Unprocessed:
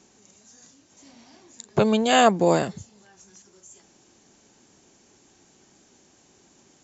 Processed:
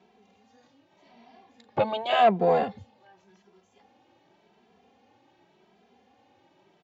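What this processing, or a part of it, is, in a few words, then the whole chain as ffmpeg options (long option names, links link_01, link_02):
barber-pole flanger into a guitar amplifier: -filter_complex "[0:a]asplit=2[link_01][link_02];[link_02]adelay=2.6,afreqshift=0.88[link_03];[link_01][link_03]amix=inputs=2:normalize=1,asoftclip=type=tanh:threshold=-15dB,highpass=90,equalizer=frequency=140:width_type=q:width=4:gain=-7,equalizer=frequency=320:width_type=q:width=4:gain=-4,equalizer=frequency=500:width_type=q:width=4:gain=4,equalizer=frequency=790:width_type=q:width=4:gain=8,equalizer=frequency=1500:width_type=q:width=4:gain=-3,lowpass=frequency=3500:width=0.5412,lowpass=frequency=3500:width=1.3066"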